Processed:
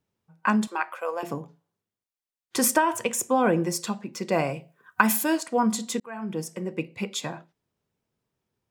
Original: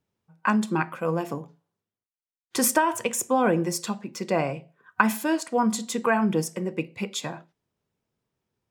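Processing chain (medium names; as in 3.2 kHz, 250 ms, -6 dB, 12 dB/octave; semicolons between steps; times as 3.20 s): 0.67–1.23 s: high-pass 500 Hz 24 dB/octave; 4.32–5.38 s: treble shelf 6.4 kHz +12 dB; 6.00–7.17 s: fade in equal-power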